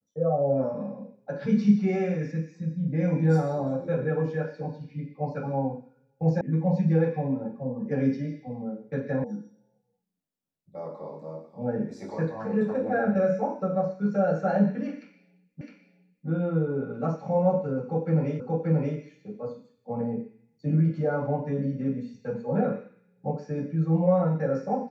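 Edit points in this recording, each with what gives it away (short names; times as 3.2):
6.41 sound cut off
9.24 sound cut off
15.61 repeat of the last 0.66 s
18.4 repeat of the last 0.58 s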